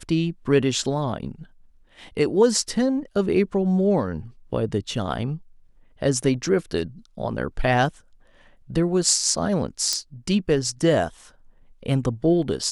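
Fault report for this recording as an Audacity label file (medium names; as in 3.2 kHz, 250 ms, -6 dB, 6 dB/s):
9.930000	9.930000	pop -9 dBFS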